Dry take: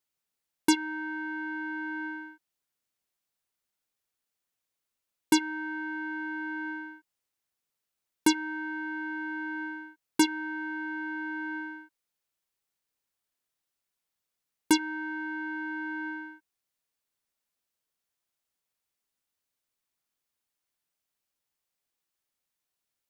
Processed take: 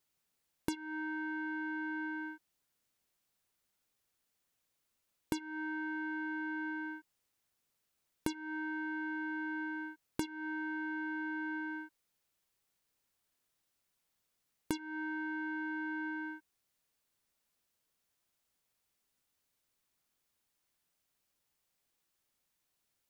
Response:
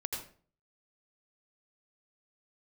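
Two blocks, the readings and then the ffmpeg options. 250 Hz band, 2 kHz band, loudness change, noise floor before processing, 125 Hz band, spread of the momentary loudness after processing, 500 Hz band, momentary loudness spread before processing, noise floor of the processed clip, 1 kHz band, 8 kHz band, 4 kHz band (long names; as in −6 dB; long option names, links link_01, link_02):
−7.5 dB, −5.5 dB, −7.5 dB, below −85 dBFS, can't be measured, 5 LU, −7.5 dB, 12 LU, −82 dBFS, −7.5 dB, −17.0 dB, −16.0 dB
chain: -filter_complex "[0:a]acompressor=threshold=-40dB:ratio=12,asplit=2[link_01][link_02];[1:a]atrim=start_sample=2205,atrim=end_sample=3087,lowshelf=frequency=420:gain=9[link_03];[link_02][link_03]afir=irnorm=-1:irlink=0,volume=-5dB[link_04];[link_01][link_04]amix=inputs=2:normalize=0"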